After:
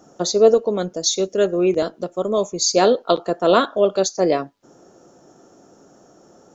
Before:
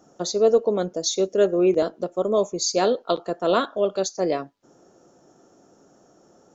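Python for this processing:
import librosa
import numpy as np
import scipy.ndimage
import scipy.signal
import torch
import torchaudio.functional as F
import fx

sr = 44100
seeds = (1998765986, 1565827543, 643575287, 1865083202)

y = fx.peak_eq(x, sr, hz=500.0, db=-5.0, octaves=2.8, at=(0.54, 2.71))
y = y * 10.0 ** (5.5 / 20.0)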